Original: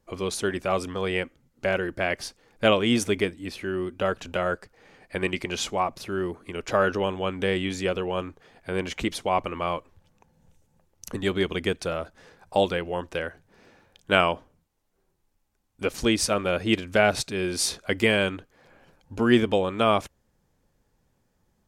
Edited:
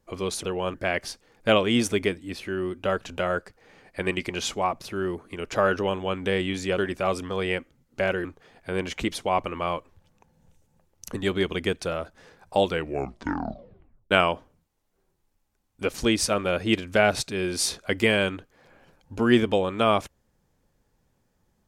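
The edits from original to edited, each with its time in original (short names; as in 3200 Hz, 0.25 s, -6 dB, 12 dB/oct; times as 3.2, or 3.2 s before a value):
0.43–1.9 swap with 7.94–8.25
12.7 tape stop 1.41 s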